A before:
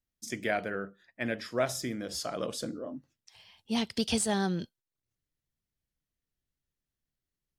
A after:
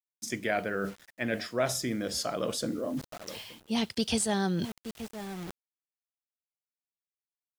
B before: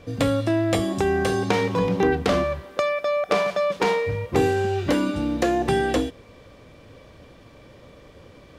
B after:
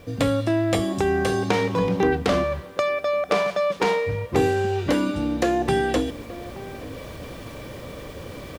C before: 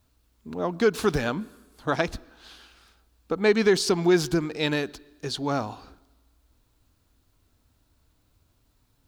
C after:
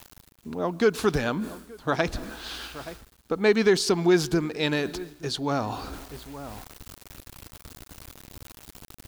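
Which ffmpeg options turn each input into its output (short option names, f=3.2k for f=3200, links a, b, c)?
-filter_complex "[0:a]asplit=2[a][b];[b]adelay=874.6,volume=-25dB,highshelf=f=4k:g=-19.7[c];[a][c]amix=inputs=2:normalize=0,acrusher=bits=9:mix=0:aa=0.000001,areverse,acompressor=mode=upward:threshold=-25dB:ratio=2.5,areverse"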